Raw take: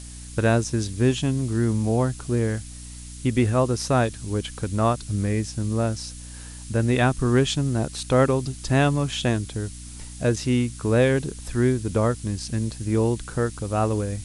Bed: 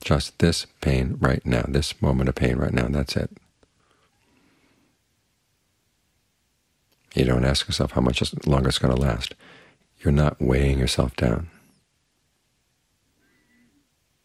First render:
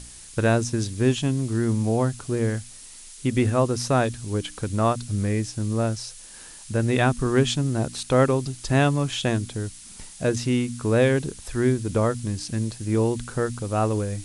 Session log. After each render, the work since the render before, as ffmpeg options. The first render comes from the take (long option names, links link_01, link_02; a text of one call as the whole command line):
ffmpeg -i in.wav -af "bandreject=frequency=60:width_type=h:width=4,bandreject=frequency=120:width_type=h:width=4,bandreject=frequency=180:width_type=h:width=4,bandreject=frequency=240:width_type=h:width=4,bandreject=frequency=300:width_type=h:width=4" out.wav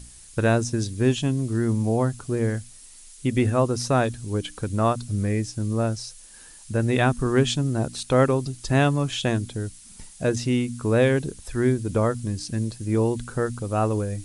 ffmpeg -i in.wav -af "afftdn=noise_reduction=6:noise_floor=-44" out.wav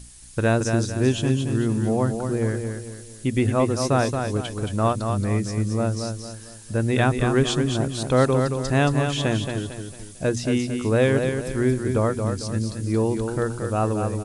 ffmpeg -i in.wav -af "aecho=1:1:225|450|675|900|1125:0.501|0.195|0.0762|0.0297|0.0116" out.wav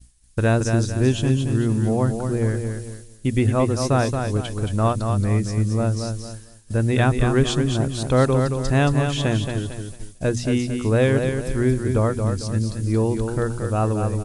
ffmpeg -i in.wav -af "agate=range=-33dB:threshold=-34dB:ratio=3:detection=peak,lowshelf=frequency=74:gain=12" out.wav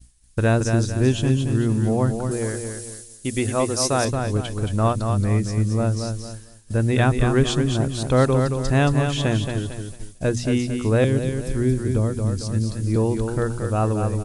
ffmpeg -i in.wav -filter_complex "[0:a]asettb=1/sr,asplit=3[link_01][link_02][link_03];[link_01]atrim=end=2.314[link_04];[link_02]atrim=start=2.31:end=4.05,asetpts=PTS-STARTPTS,afade=type=in:duration=0.004:curve=qsin,afade=type=out:start_time=1.736:duration=0.004:curve=qsin,bass=frequency=250:gain=-8,treble=frequency=4000:gain=10[link_05];[link_03]atrim=start=4.046[link_06];[link_04][link_05]acrossfade=duration=0.004:curve1=hsin:curve2=qsin[link_07];[link_07][link_06]acrossfade=duration=0.004:curve1=qsin:curve2=hsin,asettb=1/sr,asplit=3[link_08][link_09][link_10];[link_08]atrim=end=11.044[link_11];[link_09]atrim=start=11.04:end=12.96,asetpts=PTS-STARTPTS,afade=type=in:duration=0.004:curve=qsin,afade=type=out:start_time=1.916:duration=0.004:curve=qsin,acrossover=split=430|3000[link_12][link_13][link_14];[link_13]acompressor=threshold=-38dB:ratio=2.5:attack=3.2:release=140:knee=2.83:detection=peak[link_15];[link_12][link_15][link_14]amix=inputs=3:normalize=0[link_16];[link_10]atrim=start=12.956[link_17];[link_11][link_16]acrossfade=duration=0.004:curve1=hsin:curve2=qsin[link_18];[link_18][link_17]acrossfade=duration=0.004:curve1=qsin:curve2=hsin" out.wav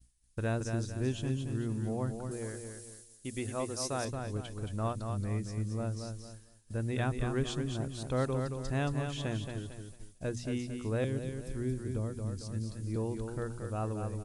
ffmpeg -i in.wav -af "volume=-14dB" out.wav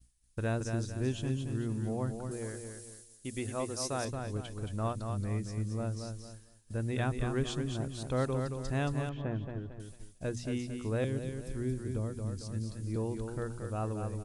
ffmpeg -i in.wav -filter_complex "[0:a]asettb=1/sr,asplit=3[link_01][link_02][link_03];[link_01]atrim=end=9.094[link_04];[link_02]atrim=start=9.09:end=9.8,asetpts=PTS-STARTPTS,afade=type=in:duration=0.004:curve=qsin,afade=type=out:start_time=0.706:duration=0.004:curve=qsin,lowpass=1500[link_05];[link_03]atrim=start=9.796[link_06];[link_04][link_05]acrossfade=duration=0.004:curve1=hsin:curve2=qsin[link_07];[link_07][link_06]acrossfade=duration=0.004:curve1=qsin:curve2=hsin" out.wav